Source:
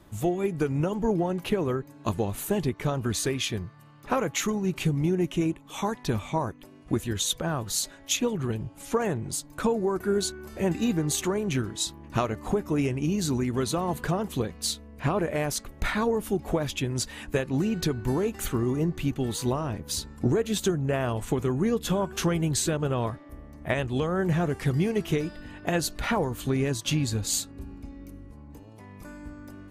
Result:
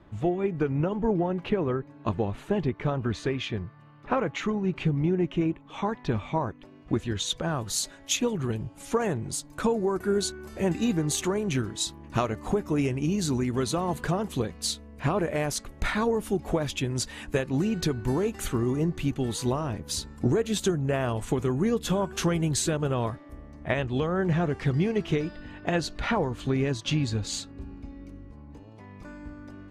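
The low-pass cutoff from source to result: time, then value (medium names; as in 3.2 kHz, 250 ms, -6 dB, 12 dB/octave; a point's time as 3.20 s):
5.76 s 2.8 kHz
7.17 s 4.8 kHz
7.69 s 11 kHz
23.21 s 11 kHz
23.74 s 5 kHz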